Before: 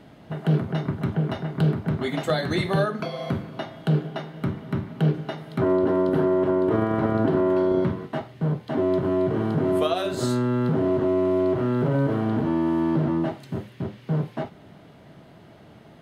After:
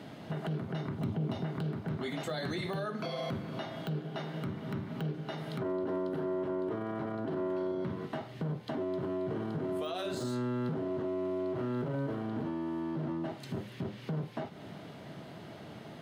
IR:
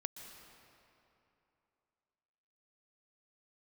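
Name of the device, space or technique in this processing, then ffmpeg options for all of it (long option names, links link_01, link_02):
broadcast voice chain: -filter_complex "[0:a]highpass=99,deesser=0.85,acompressor=threshold=-34dB:ratio=4,equalizer=frequency=4800:width_type=o:width=1.5:gain=3,alimiter=level_in=5.5dB:limit=-24dB:level=0:latency=1:release=24,volume=-5.5dB,asettb=1/sr,asplit=3[link_01][link_02][link_03];[link_01]atrim=end=0.984[link_04];[link_02]atrim=start=0.98:end=1.44,asetpts=PTS-STARTPTS,afade=type=in:duration=0.004:curve=qsin,afade=type=out:start_time=0.456:duration=0.004:curve=qsin,equalizer=frequency=100:width_type=o:width=0.67:gain=6,equalizer=frequency=250:width_type=o:width=0.67:gain=4,equalizer=frequency=1600:width_type=o:width=0.67:gain=-8[link_05];[link_03]atrim=start=1.436[link_06];[link_04][link_05]acrossfade=duration=0.004:curve1=hsin:curve2=qsin[link_07];[link_07][link_06]acrossfade=duration=0.004:curve1=qsin:curve2=hsin,volume=2dB"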